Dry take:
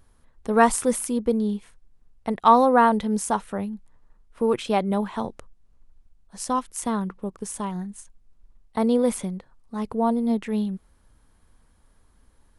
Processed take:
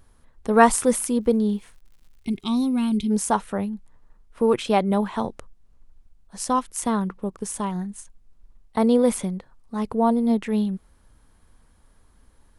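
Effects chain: 1.96–3.1 spectral gain 420–2100 Hz -24 dB; 1.2–2.65 crackle 130/s -51 dBFS; gain +2.5 dB

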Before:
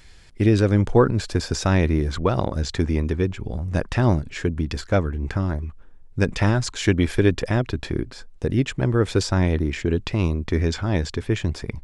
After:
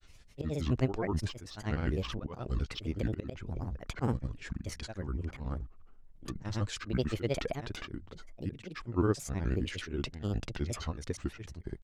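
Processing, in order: auto swell 0.176 s; grains 0.1 s, grains 19/s, pitch spread up and down by 7 st; gain -8 dB

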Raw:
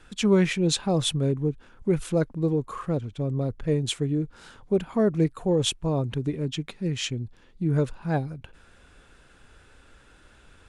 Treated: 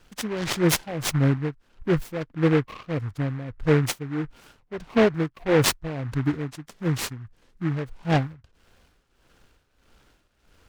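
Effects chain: spectral noise reduction 9 dB; tremolo 1.6 Hz, depth 76%; noise-modulated delay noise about 1300 Hz, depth 0.11 ms; gain +5.5 dB

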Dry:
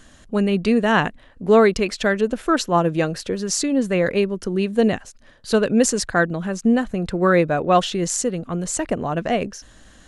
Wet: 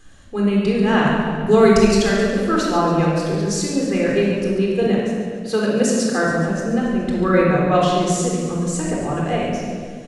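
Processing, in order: 1.07–2.3 tone controls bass +7 dB, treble +10 dB; 4.81–6.26 HPF 140 Hz 24 dB/oct; on a send: feedback echo 0.14 s, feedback 58%, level -11 dB; on the sum: shoebox room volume 2200 m³, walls mixed, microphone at 3.9 m; gain -6.5 dB

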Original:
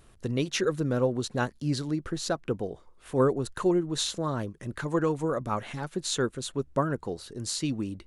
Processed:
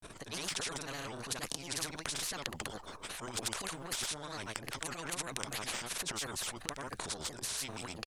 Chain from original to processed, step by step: ripple EQ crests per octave 1.6, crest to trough 7 dB; transient shaper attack -8 dB, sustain +12 dB; grains 0.1 s, grains 20/s, pitch spread up and down by 3 st; spectral compressor 4:1; gain +2 dB

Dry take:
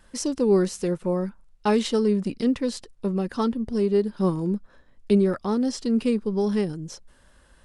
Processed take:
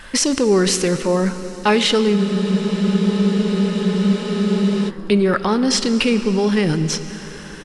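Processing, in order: bell 2300 Hz +11 dB 2.2 oct; in parallel at +1.5 dB: negative-ratio compressor -30 dBFS, ratio -1; on the sum: speakerphone echo 0.18 s, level -21 dB; plate-style reverb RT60 4.8 s, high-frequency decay 0.9×, pre-delay 0 ms, DRR 10.5 dB; spectral freeze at 2.18, 2.71 s; gain +2 dB

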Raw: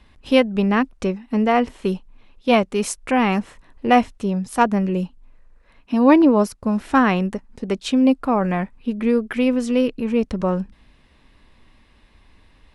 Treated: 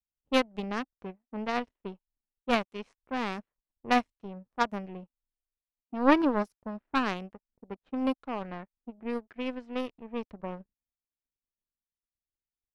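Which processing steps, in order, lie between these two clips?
power-law curve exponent 2; low-pass opened by the level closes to 620 Hz, open at -22.5 dBFS; gain -4 dB

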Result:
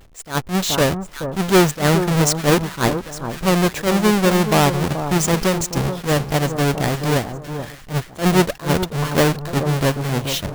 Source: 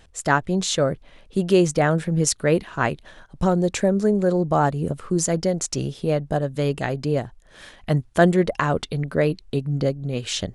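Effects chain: half-waves squared off; echo with dull and thin repeats by turns 0.429 s, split 1300 Hz, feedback 51%, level -9 dB; attack slew limiter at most 230 dB/s

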